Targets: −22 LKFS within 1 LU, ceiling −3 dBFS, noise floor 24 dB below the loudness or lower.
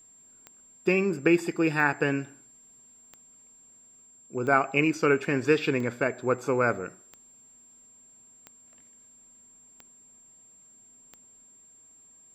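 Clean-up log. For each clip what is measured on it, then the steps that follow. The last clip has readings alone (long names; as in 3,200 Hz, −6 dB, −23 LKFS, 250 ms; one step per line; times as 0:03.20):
number of clicks 9; interfering tone 7,400 Hz; level of the tone −53 dBFS; integrated loudness −26.0 LKFS; sample peak −7.5 dBFS; target loudness −22.0 LKFS
→ click removal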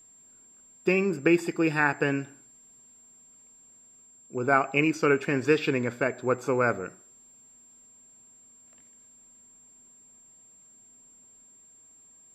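number of clicks 0; interfering tone 7,400 Hz; level of the tone −53 dBFS
→ notch filter 7,400 Hz, Q 30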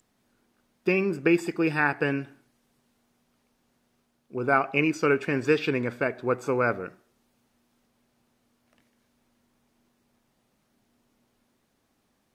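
interfering tone none found; integrated loudness −25.5 LKFS; sample peak −7.5 dBFS; target loudness −22.0 LKFS
→ level +3.5 dB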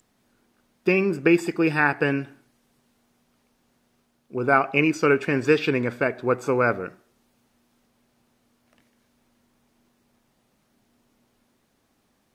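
integrated loudness −22.5 LKFS; sample peak −4.0 dBFS; background noise floor −69 dBFS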